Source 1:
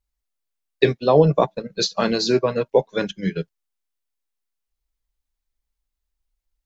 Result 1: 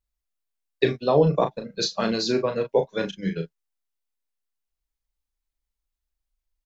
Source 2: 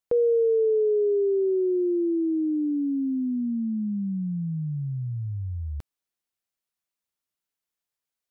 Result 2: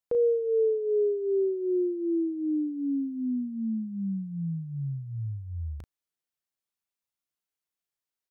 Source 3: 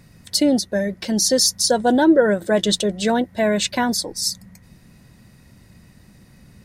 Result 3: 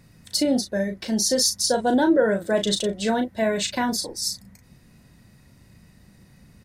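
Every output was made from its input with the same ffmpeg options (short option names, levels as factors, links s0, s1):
-filter_complex "[0:a]asplit=2[s0][s1];[s1]adelay=36,volume=0.447[s2];[s0][s2]amix=inputs=2:normalize=0,volume=0.596"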